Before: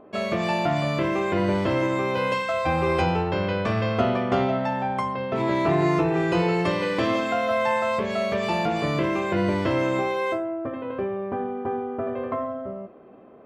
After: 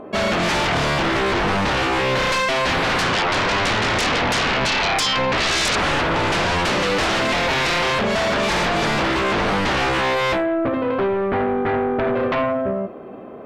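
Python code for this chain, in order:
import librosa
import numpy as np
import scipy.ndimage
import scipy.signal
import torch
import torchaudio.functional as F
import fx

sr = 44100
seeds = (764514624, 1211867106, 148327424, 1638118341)

y = fx.peak_eq(x, sr, hz=970.0, db=11.5, octaves=0.57, at=(3.13, 5.76))
y = fx.fold_sine(y, sr, drive_db=16, ceiling_db=-9.0)
y = y * librosa.db_to_amplitude(-7.5)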